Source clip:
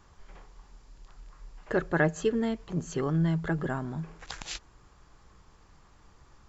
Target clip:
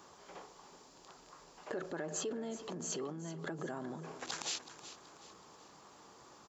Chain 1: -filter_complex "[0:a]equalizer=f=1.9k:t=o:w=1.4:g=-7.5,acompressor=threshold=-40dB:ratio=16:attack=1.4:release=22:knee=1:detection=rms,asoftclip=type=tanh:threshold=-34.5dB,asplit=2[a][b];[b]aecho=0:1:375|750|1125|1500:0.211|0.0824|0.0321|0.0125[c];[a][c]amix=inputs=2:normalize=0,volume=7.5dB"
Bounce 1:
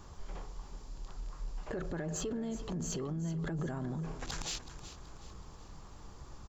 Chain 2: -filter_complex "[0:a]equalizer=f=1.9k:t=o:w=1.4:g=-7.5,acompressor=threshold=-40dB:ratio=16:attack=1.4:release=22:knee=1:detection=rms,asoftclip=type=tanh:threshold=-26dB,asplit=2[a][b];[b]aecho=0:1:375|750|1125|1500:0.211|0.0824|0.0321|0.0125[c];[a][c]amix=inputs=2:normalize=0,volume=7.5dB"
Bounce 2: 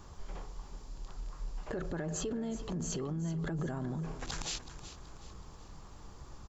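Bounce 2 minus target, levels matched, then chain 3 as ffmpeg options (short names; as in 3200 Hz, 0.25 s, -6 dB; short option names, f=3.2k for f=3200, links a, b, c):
250 Hz band +3.5 dB
-filter_complex "[0:a]equalizer=f=1.9k:t=o:w=1.4:g=-7.5,acompressor=threshold=-40dB:ratio=16:attack=1.4:release=22:knee=1:detection=rms,highpass=310,asoftclip=type=tanh:threshold=-26dB,asplit=2[a][b];[b]aecho=0:1:375|750|1125|1500:0.211|0.0824|0.0321|0.0125[c];[a][c]amix=inputs=2:normalize=0,volume=7.5dB"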